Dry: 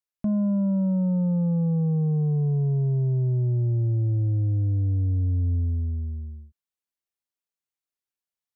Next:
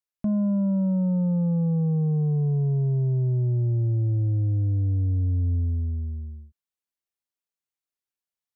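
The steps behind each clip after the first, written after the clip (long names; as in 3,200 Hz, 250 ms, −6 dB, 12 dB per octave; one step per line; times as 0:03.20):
no processing that can be heard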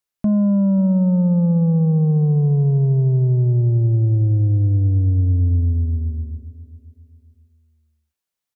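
repeating echo 539 ms, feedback 33%, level −17 dB
level +7 dB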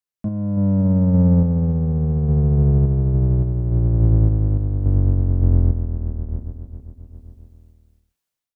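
sub-octave generator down 1 octave, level −1 dB
automatic gain control gain up to 15.5 dB
sample-and-hold tremolo
level −7 dB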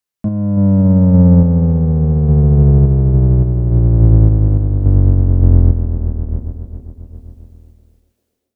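feedback echo with a band-pass in the loop 391 ms, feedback 48%, band-pass 550 Hz, level −15 dB
level +6.5 dB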